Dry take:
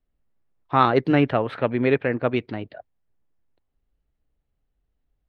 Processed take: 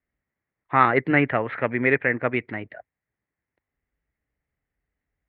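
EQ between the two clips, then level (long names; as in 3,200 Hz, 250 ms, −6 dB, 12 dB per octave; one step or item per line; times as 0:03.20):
high-pass filter 61 Hz
low-pass with resonance 2,000 Hz, resonance Q 5
−3.0 dB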